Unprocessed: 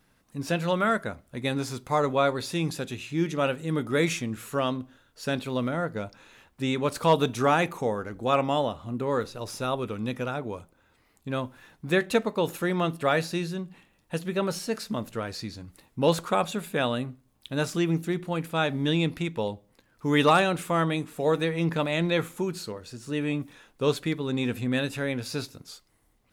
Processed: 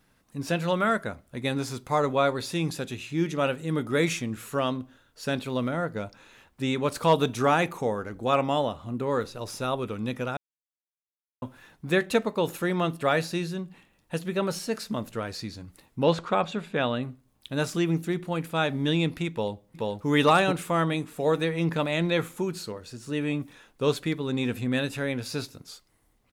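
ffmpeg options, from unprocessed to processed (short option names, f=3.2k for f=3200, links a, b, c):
-filter_complex "[0:a]asettb=1/sr,asplit=3[a][b][c];[a]atrim=end=16.034[d];[b]atrim=start=16.03:end=17.03,asetpts=PTS-STARTPTS,afade=t=in:d=0.004:c=qsin,afade=t=out:st=0.996:d=0.004:c=qsin,lowpass=4.3k[e];[c]atrim=start=17.026[f];[d][e]acrossfade=d=0.004:c1=hsin:c2=qsin[g];[g][f]acrossfade=d=0.004:c1=qsin:c2=hsin,asplit=2[h][i];[i]afade=t=in:st=19.31:d=0.01,afade=t=out:st=20.08:d=0.01,aecho=0:1:430|860|1290:0.891251|0.133688|0.0200531[j];[h][j]amix=inputs=2:normalize=0,asplit=3[k][l][m];[k]atrim=end=10.37,asetpts=PTS-STARTPTS,afade=t=out:st=10.366:d=0.004:c=hsin[n];[l]atrim=start=10.37:end=11.42,asetpts=PTS-STARTPTS,volume=0[o];[m]atrim=start=11.42,asetpts=PTS-STARTPTS,afade=t=in:d=0.004:c=hsin[p];[n][o][p]concat=n=3:v=0:a=1"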